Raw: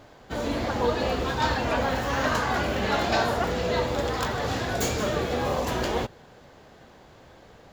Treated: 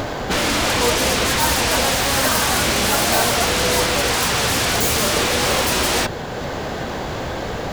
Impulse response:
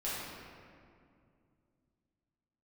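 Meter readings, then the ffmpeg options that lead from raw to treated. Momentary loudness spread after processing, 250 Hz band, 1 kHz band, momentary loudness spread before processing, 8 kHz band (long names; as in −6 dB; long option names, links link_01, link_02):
10 LU, +6.0 dB, +6.5 dB, 4 LU, +19.0 dB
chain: -filter_complex "[0:a]acompressor=mode=upward:threshold=-42dB:ratio=2.5,asplit=2[link_01][link_02];[link_02]aeval=exprs='0.168*sin(PI/2*10*val(0)/0.168)':channel_layout=same,volume=-6dB[link_03];[link_01][link_03]amix=inputs=2:normalize=0,volume=4dB"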